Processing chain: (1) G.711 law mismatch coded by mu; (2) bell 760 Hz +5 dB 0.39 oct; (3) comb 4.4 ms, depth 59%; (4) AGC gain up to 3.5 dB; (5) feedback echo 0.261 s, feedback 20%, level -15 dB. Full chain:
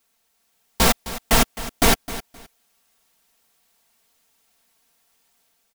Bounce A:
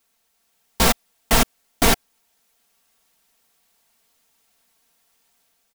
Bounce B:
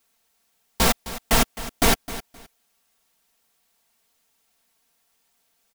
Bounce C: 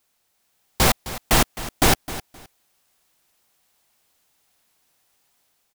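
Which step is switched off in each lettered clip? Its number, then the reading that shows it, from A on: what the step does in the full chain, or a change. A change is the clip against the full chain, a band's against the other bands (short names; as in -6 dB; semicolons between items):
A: 5, momentary loudness spread change -5 LU; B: 4, loudness change -2.0 LU; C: 3, 125 Hz band +3.0 dB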